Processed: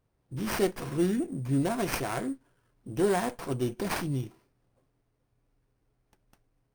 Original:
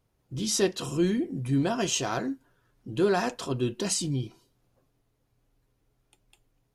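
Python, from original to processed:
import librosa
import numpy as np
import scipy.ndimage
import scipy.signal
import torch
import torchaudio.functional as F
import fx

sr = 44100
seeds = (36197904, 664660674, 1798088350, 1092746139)

y = fx.sample_hold(x, sr, seeds[0], rate_hz=8900.0, jitter_pct=0)
y = fx.running_max(y, sr, window=9)
y = y * 10.0 ** (-1.5 / 20.0)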